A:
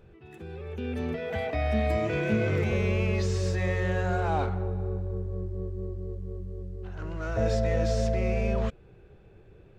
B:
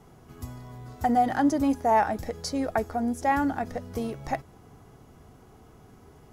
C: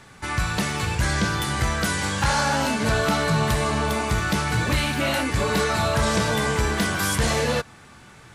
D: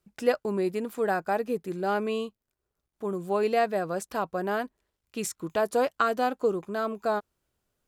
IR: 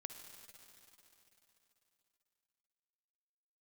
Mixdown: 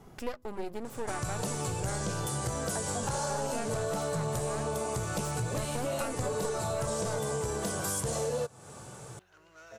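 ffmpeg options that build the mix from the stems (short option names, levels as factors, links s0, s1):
-filter_complex "[0:a]highpass=f=990:p=1,aemphasis=mode=production:type=75kf,adelay=2350,volume=0.2[s0];[1:a]volume=0.944[s1];[2:a]equalizer=f=125:t=o:w=1:g=11,equalizer=f=250:t=o:w=1:g=-4,equalizer=f=500:t=o:w=1:g=9,equalizer=f=2000:t=o:w=1:g=-11,equalizer=f=4000:t=o:w=1:g=-5,equalizer=f=8000:t=o:w=1:g=9,acontrast=45,lowshelf=f=170:g=-10,adelay=850,volume=0.562[s2];[3:a]bandreject=f=50:t=h:w=6,bandreject=f=100:t=h:w=6,bandreject=f=150:t=h:w=6,bandreject=f=200:t=h:w=6,bandreject=f=250:t=h:w=6,bandreject=f=300:t=h:w=6,bandreject=f=350:t=h:w=6,bandreject=f=400:t=h:w=6,aeval=exprs='max(val(0),0)':c=same,volume=1.12,asplit=2[s3][s4];[s4]apad=whole_len=279122[s5];[s1][s5]sidechaincompress=threshold=0.00562:ratio=8:attack=6.7:release=504[s6];[s0][s6][s2][s3]amix=inputs=4:normalize=0,acompressor=threshold=0.0251:ratio=4"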